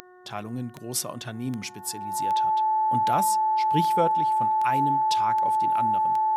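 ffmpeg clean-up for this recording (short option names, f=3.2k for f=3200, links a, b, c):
-af "adeclick=t=4,bandreject=f=363.8:t=h:w=4,bandreject=f=727.6:t=h:w=4,bandreject=f=1.0914k:t=h:w=4,bandreject=f=1.4552k:t=h:w=4,bandreject=f=1.819k:t=h:w=4,bandreject=f=870:w=30"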